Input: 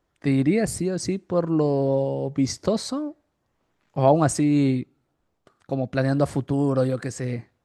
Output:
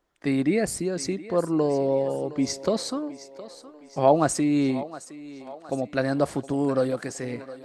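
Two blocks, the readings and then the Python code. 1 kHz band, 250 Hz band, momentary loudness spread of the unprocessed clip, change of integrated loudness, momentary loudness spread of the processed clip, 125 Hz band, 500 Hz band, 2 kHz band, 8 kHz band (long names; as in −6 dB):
0.0 dB, −2.5 dB, 11 LU, −2.0 dB, 18 LU, −8.0 dB, −0.5 dB, 0.0 dB, 0.0 dB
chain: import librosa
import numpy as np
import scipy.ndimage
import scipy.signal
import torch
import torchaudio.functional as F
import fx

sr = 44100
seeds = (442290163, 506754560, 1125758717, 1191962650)

y = fx.peak_eq(x, sr, hz=100.0, db=-12.5, octaves=1.4)
y = fx.echo_thinned(y, sr, ms=715, feedback_pct=55, hz=320.0, wet_db=-15)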